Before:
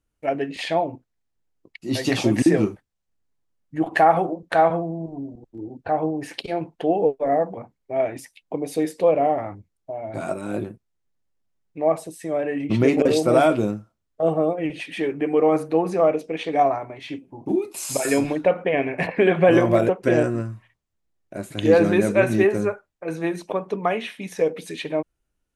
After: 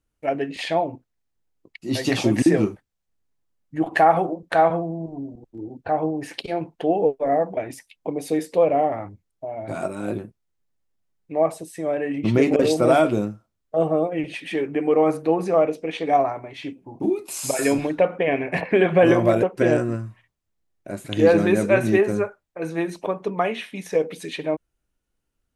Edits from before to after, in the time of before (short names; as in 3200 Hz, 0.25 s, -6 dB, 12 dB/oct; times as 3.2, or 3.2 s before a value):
7.57–8.03 cut